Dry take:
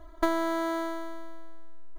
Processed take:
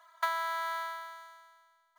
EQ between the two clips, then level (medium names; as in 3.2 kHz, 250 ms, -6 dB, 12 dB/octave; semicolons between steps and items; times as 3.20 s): inverse Chebyshev high-pass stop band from 280 Hz, stop band 60 dB; dynamic bell 7 kHz, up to -6 dB, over -60 dBFS, Q 1.3; +1.5 dB